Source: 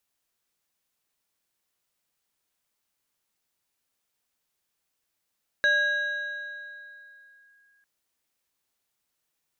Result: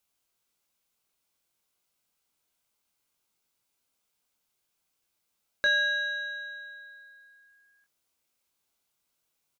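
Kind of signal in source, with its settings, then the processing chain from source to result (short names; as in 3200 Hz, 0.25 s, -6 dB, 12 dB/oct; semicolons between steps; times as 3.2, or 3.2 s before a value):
FM tone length 2.20 s, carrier 1640 Hz, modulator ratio 1.36, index 0.51, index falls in 1.97 s linear, decay 2.89 s, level -17.5 dB
notch 1800 Hz, Q 7.1; doubler 23 ms -6.5 dB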